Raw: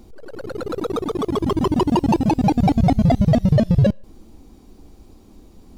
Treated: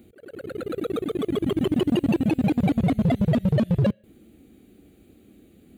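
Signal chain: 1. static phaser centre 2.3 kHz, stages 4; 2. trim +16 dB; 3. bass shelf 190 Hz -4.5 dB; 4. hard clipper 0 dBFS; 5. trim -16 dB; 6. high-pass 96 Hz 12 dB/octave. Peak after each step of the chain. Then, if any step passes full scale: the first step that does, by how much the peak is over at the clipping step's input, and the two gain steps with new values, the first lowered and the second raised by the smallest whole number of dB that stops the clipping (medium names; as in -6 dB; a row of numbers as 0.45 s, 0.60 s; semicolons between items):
-6.5 dBFS, +9.5 dBFS, +7.5 dBFS, 0.0 dBFS, -16.0 dBFS, -11.5 dBFS; step 2, 7.5 dB; step 2 +8 dB, step 5 -8 dB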